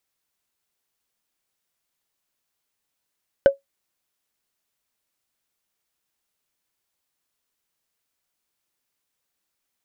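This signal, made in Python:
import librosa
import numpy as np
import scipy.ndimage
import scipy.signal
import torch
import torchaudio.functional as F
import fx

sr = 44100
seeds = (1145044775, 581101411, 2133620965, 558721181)

y = fx.strike_wood(sr, length_s=0.45, level_db=-5, body='bar', hz=553.0, decay_s=0.14, tilt_db=11.5, modes=5)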